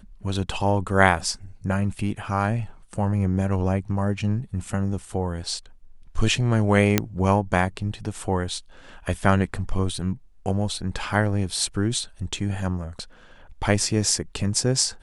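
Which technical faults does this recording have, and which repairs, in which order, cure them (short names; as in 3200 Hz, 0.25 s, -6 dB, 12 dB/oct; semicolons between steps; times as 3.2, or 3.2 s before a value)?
6.98 pop -2 dBFS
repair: de-click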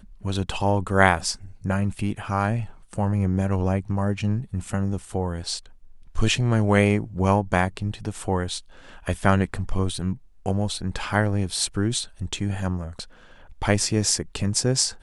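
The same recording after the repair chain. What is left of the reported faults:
none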